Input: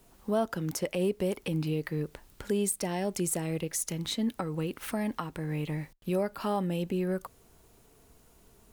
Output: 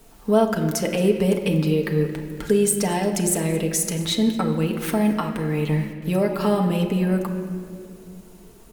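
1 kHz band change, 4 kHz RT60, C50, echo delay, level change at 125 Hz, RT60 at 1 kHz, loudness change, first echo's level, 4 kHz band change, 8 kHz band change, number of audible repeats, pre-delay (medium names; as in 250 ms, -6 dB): +9.0 dB, 1.3 s, 7.5 dB, 223 ms, +10.5 dB, 1.8 s, +10.0 dB, -18.0 dB, +9.5 dB, +9.0 dB, 1, 4 ms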